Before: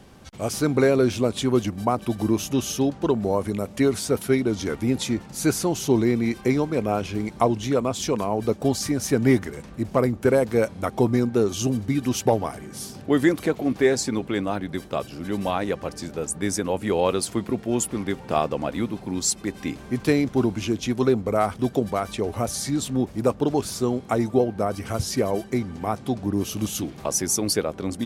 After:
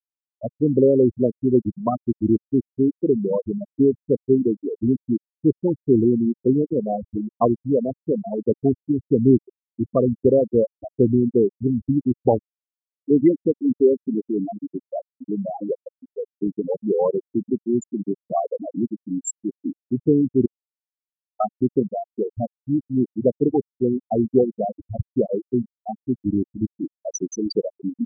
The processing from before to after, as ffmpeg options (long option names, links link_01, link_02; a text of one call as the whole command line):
ffmpeg -i in.wav -filter_complex "[0:a]asplit=3[link_01][link_02][link_03];[link_01]atrim=end=20.46,asetpts=PTS-STARTPTS,afade=type=out:start_time=20.456:duration=0.004:curve=hsin[link_04];[link_02]atrim=start=20.46:end=21.4,asetpts=PTS-STARTPTS,volume=0[link_05];[link_03]atrim=start=21.4,asetpts=PTS-STARTPTS,afade=type=in:duration=0.004:curve=hsin[link_06];[link_04][link_05][link_06]concat=n=3:v=0:a=1,equalizer=frequency=190:width=0.36:gain=5.5,afftfilt=real='re*gte(hypot(re,im),0.501)':imag='im*gte(hypot(re,im),0.501)':win_size=1024:overlap=0.75,bass=frequency=250:gain=-3,treble=frequency=4000:gain=3" out.wav